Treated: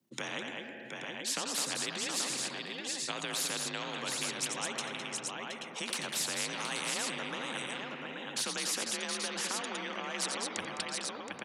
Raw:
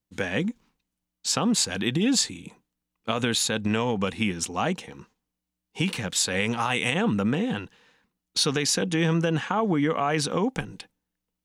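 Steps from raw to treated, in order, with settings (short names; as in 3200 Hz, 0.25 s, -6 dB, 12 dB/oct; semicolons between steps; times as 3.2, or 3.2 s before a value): formant sharpening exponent 1.5; HPF 140 Hz 12 dB/oct; frequency shift +42 Hz; on a send: tapped delay 87/209/721/831 ms -16/-12.5/-13/-14 dB; on the sum: spring tank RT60 2.6 s, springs 59 ms, chirp 55 ms, DRR 17 dB; spectral compressor 4:1; gain -6 dB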